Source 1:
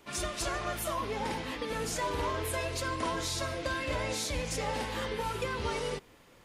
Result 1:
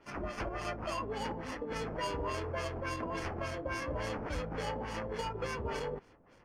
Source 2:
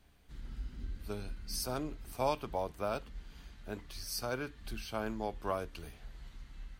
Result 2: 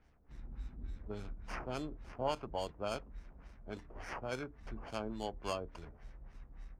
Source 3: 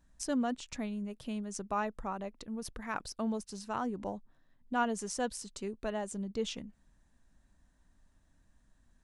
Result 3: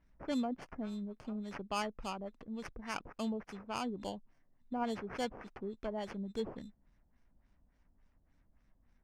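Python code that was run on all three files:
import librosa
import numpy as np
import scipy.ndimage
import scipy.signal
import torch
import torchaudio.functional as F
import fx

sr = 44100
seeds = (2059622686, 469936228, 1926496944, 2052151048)

y = fx.sample_hold(x, sr, seeds[0], rate_hz=3800.0, jitter_pct=0)
y = fx.filter_lfo_lowpass(y, sr, shape='sine', hz=3.5, low_hz=590.0, high_hz=7700.0, q=0.87)
y = y * librosa.db_to_amplitude(-3.0)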